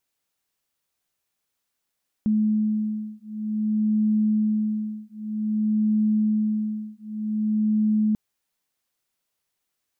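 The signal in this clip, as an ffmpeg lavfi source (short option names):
-f lavfi -i "aevalsrc='0.0668*(sin(2*PI*214*t)+sin(2*PI*214.53*t))':d=5.89:s=44100"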